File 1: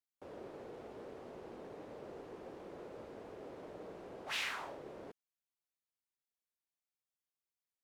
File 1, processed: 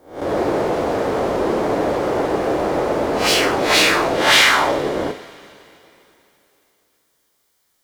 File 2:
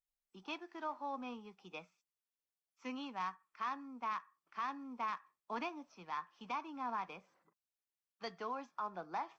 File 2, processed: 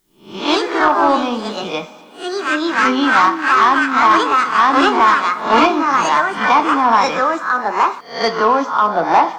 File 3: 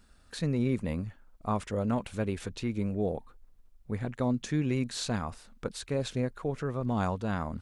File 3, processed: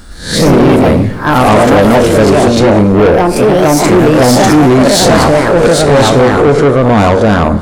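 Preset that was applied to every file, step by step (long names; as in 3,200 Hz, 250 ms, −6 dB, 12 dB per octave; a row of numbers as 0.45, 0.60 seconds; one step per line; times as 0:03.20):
peak hold with a rise ahead of every peak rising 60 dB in 0.43 s
coupled-rooms reverb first 0.42 s, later 3.2 s, from −17 dB, DRR 8.5 dB
dynamic equaliser 460 Hz, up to +7 dB, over −44 dBFS, Q 1
notch filter 2,600 Hz, Q 6.8
delay with pitch and tempo change per echo 112 ms, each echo +3 semitones, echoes 2
soft clipping −28 dBFS
normalise the peak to −3 dBFS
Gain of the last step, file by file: +26.0, +25.5, +25.0 decibels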